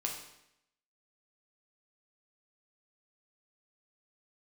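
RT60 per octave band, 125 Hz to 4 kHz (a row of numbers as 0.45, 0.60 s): 0.80, 0.85, 0.80, 0.80, 0.80, 0.75 s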